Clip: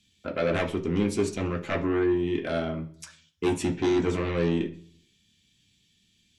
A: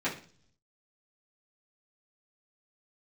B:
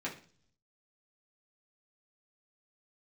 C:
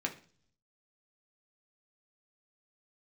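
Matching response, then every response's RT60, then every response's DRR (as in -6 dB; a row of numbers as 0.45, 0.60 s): C; 0.45, 0.45, 0.45 s; -11.0, -6.0, 1.0 dB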